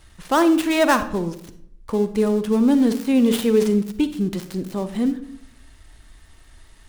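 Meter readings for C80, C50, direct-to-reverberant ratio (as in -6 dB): 15.5 dB, 11.5 dB, 10.5 dB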